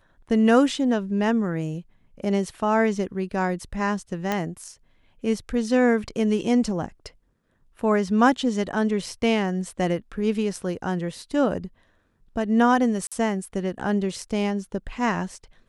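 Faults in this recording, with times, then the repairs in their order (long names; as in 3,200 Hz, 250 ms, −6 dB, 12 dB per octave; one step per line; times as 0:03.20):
0:04.32: click −11 dBFS
0:13.07–0:13.12: drop-out 46 ms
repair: click removal
repair the gap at 0:13.07, 46 ms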